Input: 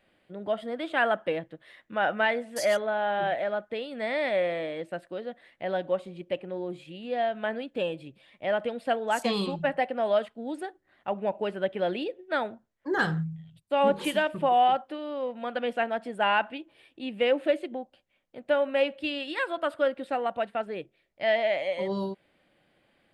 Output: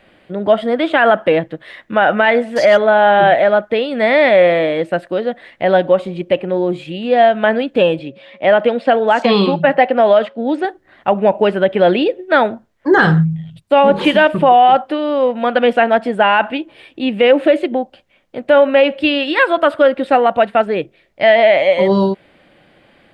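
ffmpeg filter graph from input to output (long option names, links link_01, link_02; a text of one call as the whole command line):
ffmpeg -i in.wav -filter_complex "[0:a]asettb=1/sr,asplit=3[link_01][link_02][link_03];[link_01]atrim=end=7.994[link_04];[link_02]atrim=start=7.99:end=10.65,asetpts=PTS-STARTPTS,afade=type=in:duration=0.004:curve=qsin,afade=type=out:start_time=2.656:duration=0.004:curve=qsin,aeval=exprs='val(0)+0.00112*sin(2*PI*550*n/s)':channel_layout=same,highpass=170,lowpass=5300[link_05];[link_03]atrim=start=10.646[link_06];[link_04][link_05]acrossfade=duration=0.004:curve1=hsin:curve2=qsin[link_07];[link_07][link_06]acrossfade=duration=0.004:curve1=qsin:curve2=hsin,acrossover=split=4700[link_08][link_09];[link_09]acompressor=threshold=-58dB:ratio=4:attack=1:release=60[link_10];[link_08][link_10]amix=inputs=2:normalize=0,highshelf=frequency=7100:gain=-10,alimiter=level_in=18.5dB:limit=-1dB:release=50:level=0:latency=1,volume=-1dB" out.wav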